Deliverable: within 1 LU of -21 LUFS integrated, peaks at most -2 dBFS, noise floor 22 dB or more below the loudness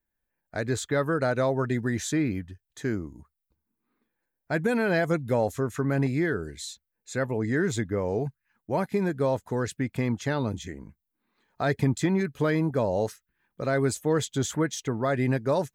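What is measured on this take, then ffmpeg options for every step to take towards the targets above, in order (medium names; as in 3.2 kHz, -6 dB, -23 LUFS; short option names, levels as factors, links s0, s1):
loudness -27.5 LUFS; peak level -13.0 dBFS; loudness target -21.0 LUFS
-> -af "volume=2.11"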